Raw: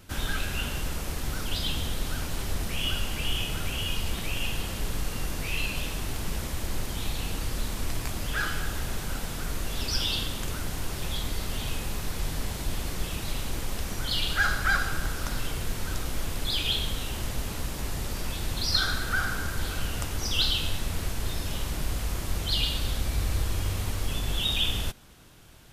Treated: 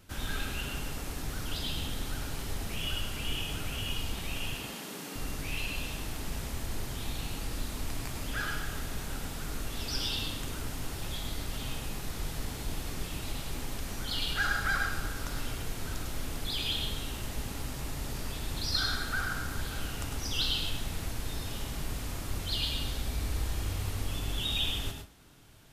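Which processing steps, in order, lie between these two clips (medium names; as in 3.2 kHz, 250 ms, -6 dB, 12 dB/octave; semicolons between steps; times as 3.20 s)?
4.54–5.16 s: steep high-pass 170 Hz; reverberation RT60 0.30 s, pre-delay 98 ms, DRR 3.5 dB; trim -6 dB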